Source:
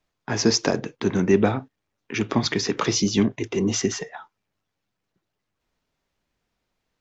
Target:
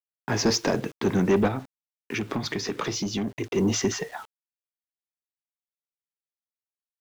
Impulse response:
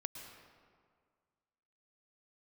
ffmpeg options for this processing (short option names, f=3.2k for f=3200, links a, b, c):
-filter_complex "[0:a]acrusher=bits=7:mix=0:aa=0.000001,asoftclip=type=tanh:threshold=-16.5dB,asettb=1/sr,asplit=3[a][b][c];[a]atrim=end=1.474[d];[b]atrim=start=1.47:end=3.56,asetpts=PTS-STARTPTS,afade=t=in:d=0.004:c=qsin,afade=t=out:st=2.086:d=0.004:c=qsin,acompressor=threshold=-27dB:ratio=6[e];[c]atrim=start=3.556[f];[d][e]acrossfade=d=0.004:c1=hsin:c2=qsin[g];[g][f]acrossfade=d=0.004:c1=qsin:c2=hsin,highshelf=f=5.3k:g=-5,volume=1.5dB"